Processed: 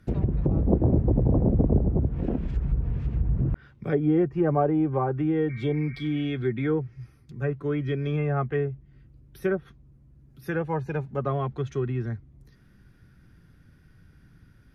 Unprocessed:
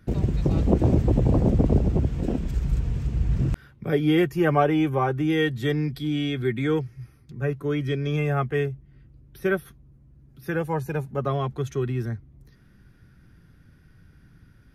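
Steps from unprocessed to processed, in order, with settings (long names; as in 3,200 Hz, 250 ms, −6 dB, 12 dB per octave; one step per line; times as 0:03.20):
treble cut that deepens with the level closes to 870 Hz, closed at −18 dBFS
healed spectral selection 0:05.52–0:06.23, 1,100–2,400 Hz after
level −1.5 dB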